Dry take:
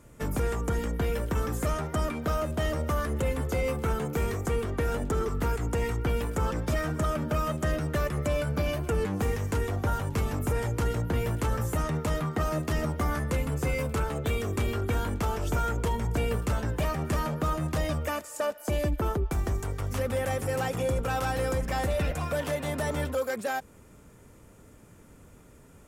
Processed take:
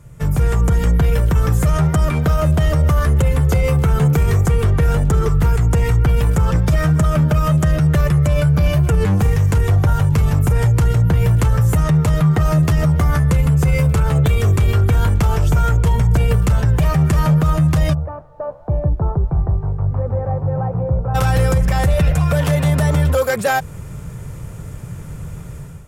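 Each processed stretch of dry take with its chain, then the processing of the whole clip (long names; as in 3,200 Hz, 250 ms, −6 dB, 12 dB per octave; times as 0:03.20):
0:17.93–0:21.14: flanger 1.7 Hz, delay 5.9 ms, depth 9.3 ms, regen +89% + transistor ladder low-pass 1,100 Hz, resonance 35% + background noise brown −69 dBFS
whole clip: low shelf with overshoot 190 Hz +7.5 dB, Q 3; automatic gain control; boost into a limiter +10.5 dB; level −6.5 dB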